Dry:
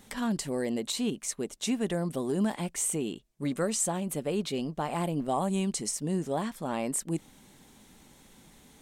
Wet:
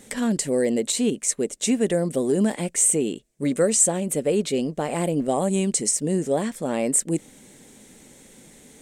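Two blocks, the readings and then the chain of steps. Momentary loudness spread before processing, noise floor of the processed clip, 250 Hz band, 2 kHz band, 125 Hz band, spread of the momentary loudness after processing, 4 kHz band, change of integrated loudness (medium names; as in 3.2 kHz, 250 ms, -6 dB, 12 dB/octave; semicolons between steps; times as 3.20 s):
5 LU, -51 dBFS, +7.0 dB, +6.0 dB, +5.0 dB, 7 LU, +4.5 dB, +8.5 dB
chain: graphic EQ 125/250/500/1000/2000/8000 Hz +3/+5/+11/-4/+7/+12 dB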